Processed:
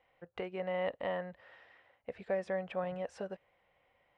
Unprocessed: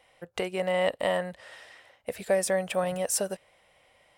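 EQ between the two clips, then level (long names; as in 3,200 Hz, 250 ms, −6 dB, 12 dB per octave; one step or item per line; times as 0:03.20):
low-pass filter 2,400 Hz 12 dB per octave
high-frequency loss of the air 51 metres
notch filter 620 Hz, Q 14
−8.0 dB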